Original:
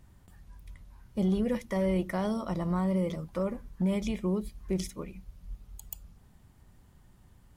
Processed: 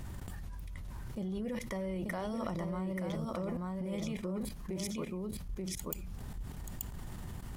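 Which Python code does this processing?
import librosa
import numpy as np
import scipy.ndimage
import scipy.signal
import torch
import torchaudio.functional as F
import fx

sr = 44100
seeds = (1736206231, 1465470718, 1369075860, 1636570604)

p1 = fx.level_steps(x, sr, step_db=20)
p2 = fx.highpass(p1, sr, hz=93.0, slope=12, at=(3.99, 5.13))
p3 = p2 + fx.echo_single(p2, sr, ms=882, db=-5.0, dry=0)
p4 = fx.env_flatten(p3, sr, amount_pct=70)
y = F.gain(torch.from_numpy(p4), 1.0).numpy()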